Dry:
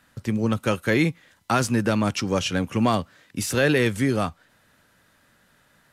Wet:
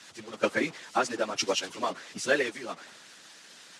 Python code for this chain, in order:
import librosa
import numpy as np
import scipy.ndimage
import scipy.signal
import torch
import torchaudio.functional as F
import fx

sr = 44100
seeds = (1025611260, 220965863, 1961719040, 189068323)

y = fx.delta_mod(x, sr, bps=64000, step_db=-25.5)
y = scipy.signal.sosfilt(scipy.signal.butter(4, 180.0, 'highpass', fs=sr, output='sos'), y)
y = fx.hpss(y, sr, part='harmonic', gain_db=-15)
y = fx.transient(y, sr, attack_db=3, sustain_db=-2)
y = fx.stretch_vocoder_free(y, sr, factor=0.64)
y = scipy.signal.sosfilt(scipy.signal.cheby1(2, 1.0, 6300.0, 'lowpass', fs=sr, output='sos'), y)
y = fx.band_widen(y, sr, depth_pct=100)